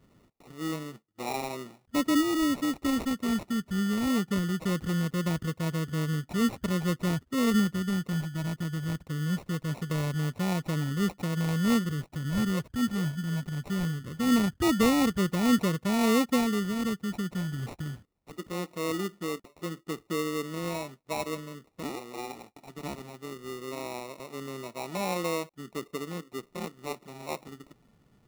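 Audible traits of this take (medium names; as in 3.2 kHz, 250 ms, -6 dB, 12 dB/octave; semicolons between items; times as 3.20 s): phasing stages 4, 0.21 Hz, lowest notch 530–1600 Hz; aliases and images of a low sample rate 1.6 kHz, jitter 0%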